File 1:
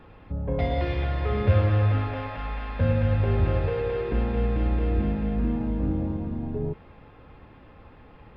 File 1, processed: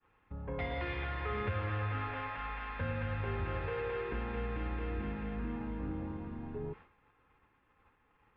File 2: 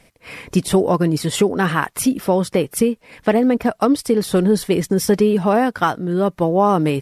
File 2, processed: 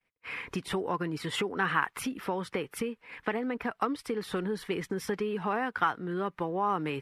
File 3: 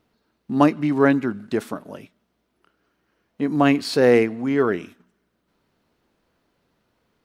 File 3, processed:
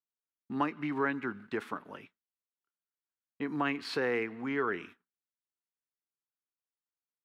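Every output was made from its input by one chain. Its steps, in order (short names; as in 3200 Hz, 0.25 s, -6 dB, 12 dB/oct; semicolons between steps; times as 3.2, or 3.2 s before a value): compressor 3:1, threshold -20 dBFS; three-band isolator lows -13 dB, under 470 Hz, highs -17 dB, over 3000 Hz; expander -46 dBFS; bell 620 Hz -12.5 dB 0.67 oct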